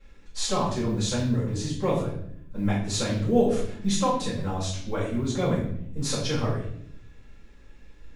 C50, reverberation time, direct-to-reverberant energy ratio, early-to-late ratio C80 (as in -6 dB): 3.5 dB, 0.65 s, -11.0 dB, 8.0 dB